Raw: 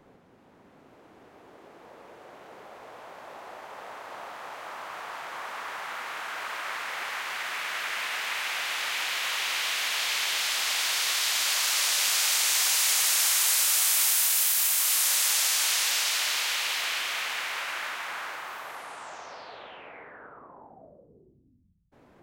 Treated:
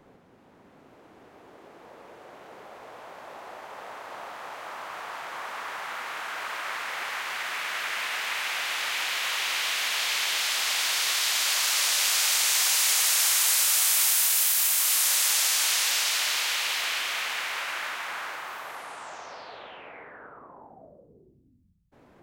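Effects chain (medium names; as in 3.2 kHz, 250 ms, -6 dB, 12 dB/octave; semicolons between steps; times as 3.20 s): 11.98–14.40 s: high-pass 170 Hz 12 dB/octave; trim +1 dB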